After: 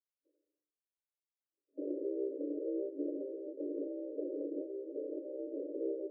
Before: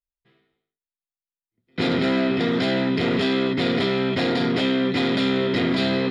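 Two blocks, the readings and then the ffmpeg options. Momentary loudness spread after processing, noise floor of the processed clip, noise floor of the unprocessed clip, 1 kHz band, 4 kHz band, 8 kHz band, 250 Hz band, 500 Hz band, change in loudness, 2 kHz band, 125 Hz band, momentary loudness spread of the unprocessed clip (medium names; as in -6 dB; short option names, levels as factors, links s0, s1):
4 LU, under -85 dBFS, under -85 dBFS, under -40 dB, under -40 dB, no reading, -19.0 dB, -14.0 dB, -18.0 dB, under -40 dB, under -40 dB, 1 LU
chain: -af "afftfilt=real='real(if(lt(b,736),b+184*(1-2*mod(floor(b/184),2)),b),0)':imag='imag(if(lt(b,736),b+184*(1-2*mod(floor(b/184),2)),b),0)':win_size=2048:overlap=0.75,aeval=exprs='abs(val(0))':c=same,afftfilt=real='re*between(b*sr/4096,270,620)':imag='im*between(b*sr/4096,270,620)':win_size=4096:overlap=0.75"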